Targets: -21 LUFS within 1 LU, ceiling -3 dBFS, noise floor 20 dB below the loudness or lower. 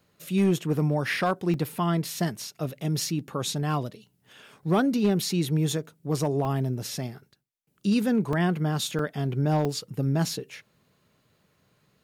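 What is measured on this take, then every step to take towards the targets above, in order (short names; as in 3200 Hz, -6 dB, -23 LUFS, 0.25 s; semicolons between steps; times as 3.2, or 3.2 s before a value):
clipped 0.3%; flat tops at -16.0 dBFS; dropouts 5; longest dropout 2.3 ms; loudness -27.0 LUFS; peak -16.0 dBFS; loudness target -21.0 LUFS
-> clip repair -16 dBFS; interpolate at 1.54/6.45/8.33/8.99/9.65, 2.3 ms; gain +6 dB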